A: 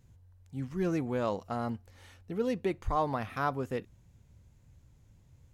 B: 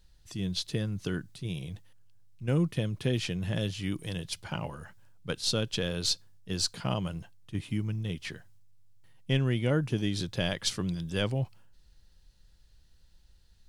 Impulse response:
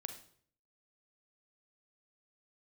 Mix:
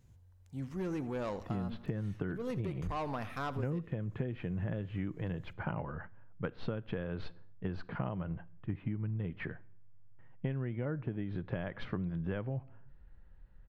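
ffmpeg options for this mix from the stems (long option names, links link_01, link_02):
-filter_complex "[0:a]asoftclip=type=tanh:threshold=-27.5dB,volume=-2dB,asplit=2[link_01][link_02];[link_02]volume=-17dB[link_03];[1:a]lowpass=frequency=1900:width=0.5412,lowpass=frequency=1900:width=1.3066,adelay=1150,volume=2dB,asplit=2[link_04][link_05];[link_05]volume=-12dB[link_06];[2:a]atrim=start_sample=2205[link_07];[link_06][link_07]afir=irnorm=-1:irlink=0[link_08];[link_03]aecho=0:1:81|162|243|324|405|486:1|0.45|0.202|0.0911|0.041|0.0185[link_09];[link_01][link_04][link_08][link_09]amix=inputs=4:normalize=0,acompressor=threshold=-32dB:ratio=16"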